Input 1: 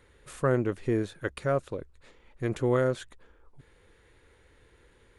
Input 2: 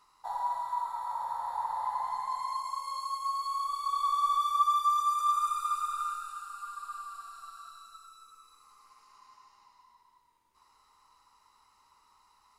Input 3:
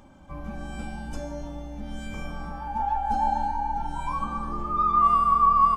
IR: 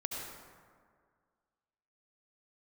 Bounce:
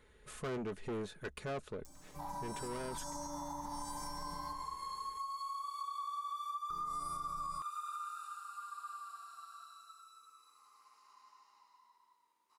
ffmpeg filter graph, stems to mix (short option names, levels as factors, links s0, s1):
-filter_complex "[0:a]aecho=1:1:4.7:0.43,asoftclip=type=tanh:threshold=0.0282,volume=0.562[s0];[1:a]highpass=250,adelay=1950,volume=0.562[s1];[2:a]aexciter=amount=15:drive=4.5:freq=4500,aecho=1:1:6.6:0.8,adelay=1850,volume=0.158,asplit=3[s2][s3][s4];[s2]atrim=end=4.53,asetpts=PTS-STARTPTS,afade=t=out:st=4.526:d=0.004:c=hsin[s5];[s3]atrim=start=4.53:end=6.7,asetpts=PTS-STARTPTS,volume=0[s6];[s4]atrim=start=6.7,asetpts=PTS-STARTPTS,afade=t=in:d=0.004:c=hsin[s7];[s5][s6][s7]concat=n=3:v=0:a=1,asplit=2[s8][s9];[s9]volume=0.531[s10];[s1][s8]amix=inputs=2:normalize=0,acompressor=threshold=0.0112:ratio=6,volume=1[s11];[3:a]atrim=start_sample=2205[s12];[s10][s12]afir=irnorm=-1:irlink=0[s13];[s0][s11][s13]amix=inputs=3:normalize=0,alimiter=level_in=2.99:limit=0.0631:level=0:latency=1:release=71,volume=0.335"